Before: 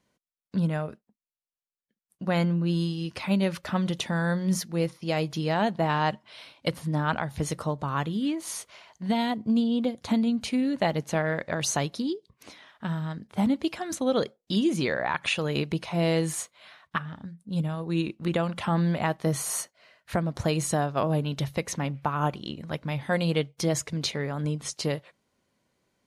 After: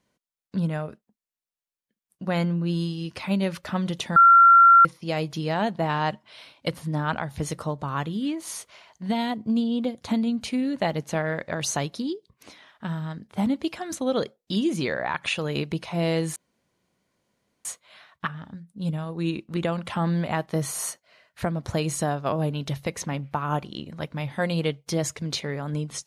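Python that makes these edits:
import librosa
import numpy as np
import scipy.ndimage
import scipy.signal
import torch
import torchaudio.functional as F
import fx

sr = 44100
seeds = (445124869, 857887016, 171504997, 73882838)

y = fx.edit(x, sr, fx.bleep(start_s=4.16, length_s=0.69, hz=1370.0, db=-9.5),
    fx.insert_room_tone(at_s=16.36, length_s=1.29), tone=tone)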